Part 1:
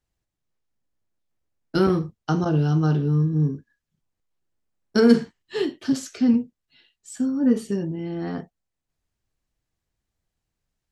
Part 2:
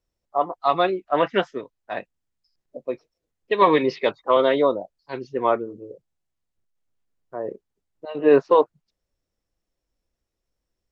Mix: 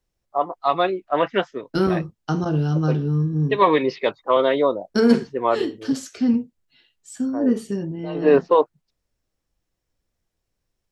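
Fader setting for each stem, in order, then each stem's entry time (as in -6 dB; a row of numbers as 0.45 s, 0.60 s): -0.5 dB, 0.0 dB; 0.00 s, 0.00 s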